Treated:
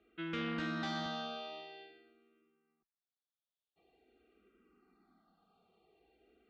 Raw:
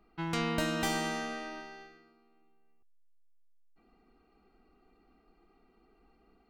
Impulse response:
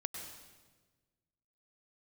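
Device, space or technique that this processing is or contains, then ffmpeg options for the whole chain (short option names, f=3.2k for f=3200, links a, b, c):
barber-pole phaser into a guitar amplifier: -filter_complex "[0:a]asplit=2[a][b];[b]afreqshift=-0.47[c];[a][c]amix=inputs=2:normalize=1,asoftclip=type=tanh:threshold=-31dB,highpass=100,equalizer=f=140:t=q:w=4:g=-5,equalizer=f=280:t=q:w=4:g=-4,equalizer=f=940:t=q:w=4:g=-9,equalizer=f=2k:t=q:w=4:g=-4,equalizer=f=3.5k:t=q:w=4:g=8,lowpass=f=4.1k:w=0.5412,lowpass=f=4.1k:w=1.3066,asettb=1/sr,asplit=3[d][e][f];[d]atrim=end=1.064[g];[e]atrim=start=1.06:end=1.91,asetpts=PTS-STARTPTS,afade=t=in:d=0.004:c=qsin,afade=t=out:st=0.846:d=0.004:c=qsin,highpass=140[h];[f]atrim=start=1.906[i];[g][h]acrossfade=d=0.004:c1=hsin:c2=qsin[j];[j][i]acrossfade=d=0.004:c1=qsin:c2=hsin,volume=1dB"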